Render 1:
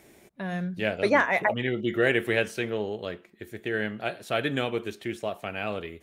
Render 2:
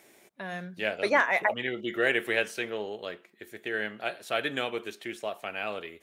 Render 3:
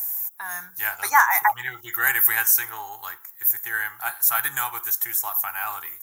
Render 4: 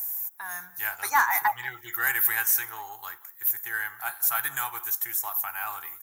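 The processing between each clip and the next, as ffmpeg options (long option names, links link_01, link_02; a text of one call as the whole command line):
ffmpeg -i in.wav -af "highpass=frequency=560:poles=1" out.wav
ffmpeg -i in.wav -af "aexciter=amount=8.8:drive=9.7:freq=7100,firequalizer=gain_entry='entry(140,0);entry(210,-29);entry(320,-12);entry(570,-24);entry(810,12);entry(1600,8);entry(2700,-7);entry(5200,11);entry(9000,-4);entry(13000,14)':delay=0.05:min_phase=1" out.wav
ffmpeg -i in.wav -filter_complex "[0:a]asplit=2[link_01][link_02];[link_02]asoftclip=type=tanh:threshold=-14dB,volume=-3dB[link_03];[link_01][link_03]amix=inputs=2:normalize=0,asplit=2[link_04][link_05];[link_05]adelay=180,highpass=300,lowpass=3400,asoftclip=type=hard:threshold=-10dB,volume=-20dB[link_06];[link_04][link_06]amix=inputs=2:normalize=0,volume=-8.5dB" out.wav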